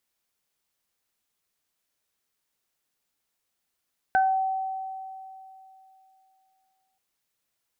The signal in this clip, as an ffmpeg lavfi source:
ffmpeg -f lavfi -i "aevalsrc='0.133*pow(10,-3*t/2.94)*sin(2*PI*764*t)+0.0944*pow(10,-3*t/0.29)*sin(2*PI*1528*t)':duration=2.83:sample_rate=44100" out.wav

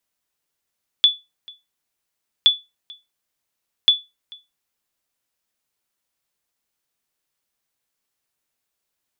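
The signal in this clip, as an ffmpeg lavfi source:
ffmpeg -f lavfi -i "aevalsrc='0.562*(sin(2*PI*3450*mod(t,1.42))*exp(-6.91*mod(t,1.42)/0.22)+0.0501*sin(2*PI*3450*max(mod(t,1.42)-0.44,0))*exp(-6.91*max(mod(t,1.42)-0.44,0)/0.22))':duration=4.26:sample_rate=44100" out.wav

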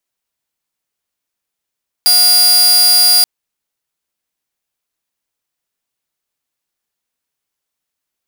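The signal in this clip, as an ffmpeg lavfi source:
ffmpeg -f lavfi -i "aevalsrc='0.631*(2*mod(4820*t,1)-1)':duration=1.18:sample_rate=44100" out.wav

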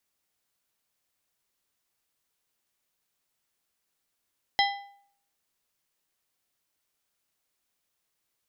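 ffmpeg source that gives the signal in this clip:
ffmpeg -f lavfi -i "aevalsrc='0.0944*pow(10,-3*t/0.61)*sin(2*PI*802*t)+0.075*pow(10,-3*t/0.463)*sin(2*PI*2005*t)+0.0596*pow(10,-3*t/0.402)*sin(2*PI*3208*t)+0.0473*pow(10,-3*t/0.376)*sin(2*PI*4010*t)+0.0376*pow(10,-3*t/0.348)*sin(2*PI*5213*t)':duration=1.55:sample_rate=44100" out.wav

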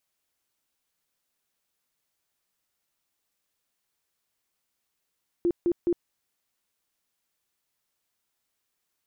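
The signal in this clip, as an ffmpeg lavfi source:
ffmpeg -f lavfi -i "aevalsrc='0.1*sin(2*PI*346*mod(t,0.21))*lt(mod(t,0.21),20/346)':duration=0.63:sample_rate=44100" out.wav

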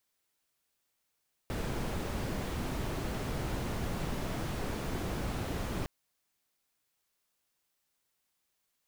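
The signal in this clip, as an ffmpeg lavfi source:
ffmpeg -f lavfi -i "anoisesrc=color=brown:amplitude=0.0881:duration=4.36:sample_rate=44100:seed=1" out.wav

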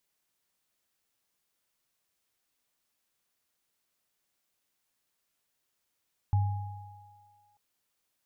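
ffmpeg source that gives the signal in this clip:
ffmpeg -f lavfi -i "aevalsrc='0.0944*pow(10,-3*t/1.24)*sin(2*PI*99.4*t)+0.0168*pow(10,-3*t/2.42)*sin(2*PI*829*t)':duration=1.24:sample_rate=44100" out.wav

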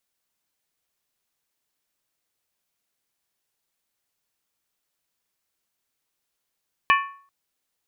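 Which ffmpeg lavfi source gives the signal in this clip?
ffmpeg -f lavfi -i "aevalsrc='0.211*pow(10,-3*t/0.48)*sin(2*PI*1110*t)+0.15*pow(10,-3*t/0.38)*sin(2*PI*1769.3*t)+0.106*pow(10,-3*t/0.328)*sin(2*PI*2371*t)+0.075*pow(10,-3*t/0.317)*sin(2*PI*2548.6*t)+0.0531*pow(10,-3*t/0.295)*sin(2*PI*2944.8*t)':duration=0.39:sample_rate=44100" out.wav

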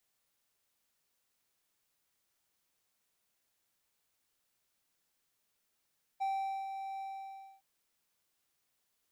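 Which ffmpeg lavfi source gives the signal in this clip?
ffmpeg -f lavfi -i "aevalsrc='0.0376*(1-4*abs(mod(778*t+0.25,1)-0.5))':duration=1.414:sample_rate=44100,afade=type=in:duration=0.02,afade=type=out:start_time=0.02:duration=0.447:silence=0.398,afade=type=out:start_time=0.8:duration=0.614" out.wav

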